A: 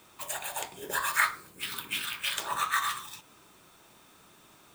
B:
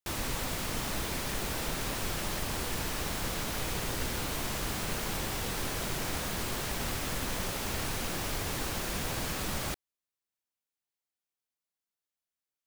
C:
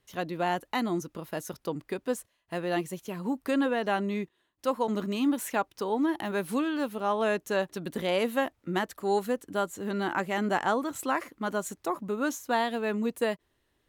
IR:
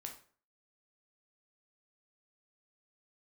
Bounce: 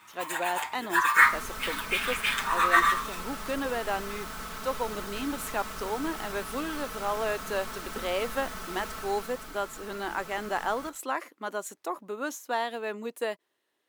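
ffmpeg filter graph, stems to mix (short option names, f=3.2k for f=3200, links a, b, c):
-filter_complex "[0:a]equalizer=f=500:t=o:w=1:g=-11,equalizer=f=1k:t=o:w=1:g=12,equalizer=f=2k:t=o:w=1:g=11,asplit=2[a][b];[b]adelay=6.8,afreqshift=2.3[c];[a][c]amix=inputs=2:normalize=1,volume=-3dB,asplit=2[d][e];[e]volume=-5.5dB[f];[1:a]equalizer=f=1.3k:t=o:w=0.52:g=12.5,aecho=1:1:4.6:0.85,adelay=1150,volume=-12.5dB,afade=t=out:st=8.83:d=0.74:silence=0.473151,asplit=2[g][h];[h]volume=-2dB[i];[2:a]highpass=370,acontrast=90,volume=-9dB[j];[3:a]atrim=start_sample=2205[k];[f][i]amix=inputs=2:normalize=0[l];[l][k]afir=irnorm=-1:irlink=0[m];[d][g][j][m]amix=inputs=4:normalize=0"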